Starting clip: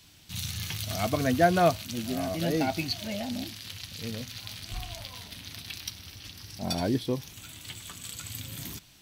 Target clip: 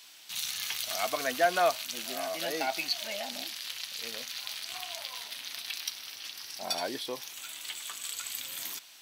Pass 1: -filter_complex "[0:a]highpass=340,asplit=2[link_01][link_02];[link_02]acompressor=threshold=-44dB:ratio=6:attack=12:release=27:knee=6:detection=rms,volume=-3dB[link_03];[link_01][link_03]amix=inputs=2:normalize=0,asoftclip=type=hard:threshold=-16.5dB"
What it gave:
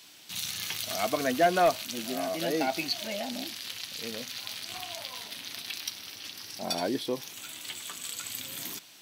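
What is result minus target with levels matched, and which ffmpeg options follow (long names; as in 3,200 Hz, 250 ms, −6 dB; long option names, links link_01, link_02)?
250 Hz band +9.0 dB
-filter_complex "[0:a]highpass=710,asplit=2[link_01][link_02];[link_02]acompressor=threshold=-44dB:ratio=6:attack=12:release=27:knee=6:detection=rms,volume=-3dB[link_03];[link_01][link_03]amix=inputs=2:normalize=0,asoftclip=type=hard:threshold=-16.5dB"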